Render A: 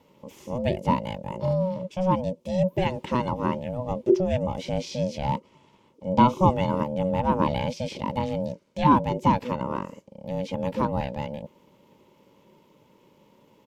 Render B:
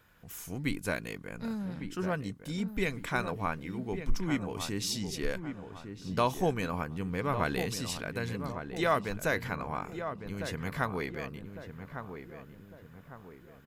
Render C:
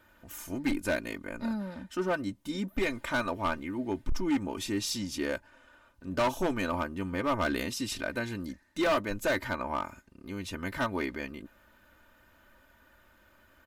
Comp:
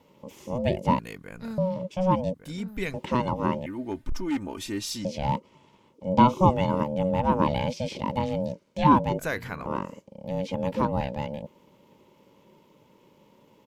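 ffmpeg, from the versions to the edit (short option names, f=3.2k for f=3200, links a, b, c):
-filter_complex "[1:a]asplit=3[a][b][c];[0:a]asplit=5[d][e][f][g][h];[d]atrim=end=0.992[i];[a]atrim=start=0.988:end=1.582[j];[e]atrim=start=1.578:end=2.342[k];[b]atrim=start=2.338:end=2.942[l];[f]atrim=start=2.938:end=3.662[m];[2:a]atrim=start=3.658:end=5.052[n];[g]atrim=start=5.048:end=9.192[o];[c]atrim=start=9.188:end=9.662[p];[h]atrim=start=9.658[q];[i][j]acrossfade=d=0.004:c1=hsin:c2=hsin[r];[r][k]acrossfade=d=0.004:c1=hsin:c2=hsin[s];[s][l]acrossfade=d=0.004:c1=hsin:c2=hsin[t];[t][m]acrossfade=d=0.004:c1=hsin:c2=hsin[u];[u][n]acrossfade=d=0.004:c1=hsin:c2=hsin[v];[v][o]acrossfade=d=0.004:c1=hsin:c2=hsin[w];[w][p]acrossfade=d=0.004:c1=hsin:c2=hsin[x];[x][q]acrossfade=d=0.004:c1=hsin:c2=hsin"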